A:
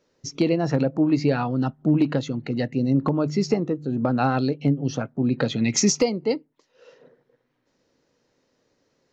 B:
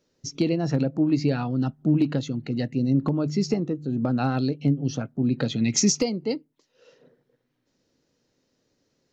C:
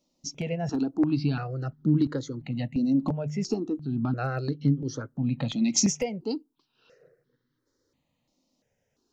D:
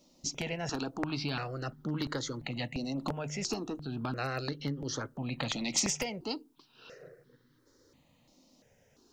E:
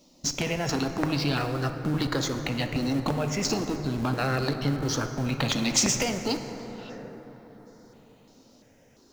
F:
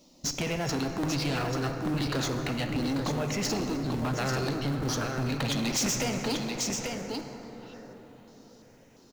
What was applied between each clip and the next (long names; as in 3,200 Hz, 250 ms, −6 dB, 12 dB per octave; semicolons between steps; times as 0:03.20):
octave-band graphic EQ 500/1,000/2,000 Hz −4/−6/−4 dB
step-sequenced phaser 2.9 Hz 430–2,500 Hz
every bin compressed towards the loudest bin 2 to 1; level −4 dB
in parallel at −6.5 dB: comparator with hysteresis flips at −37.5 dBFS; on the sum: dense smooth reverb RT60 4.8 s, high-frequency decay 0.35×, DRR 6.5 dB; level +5.5 dB
single-tap delay 839 ms −6.5 dB; soft clipping −24 dBFS, distortion −12 dB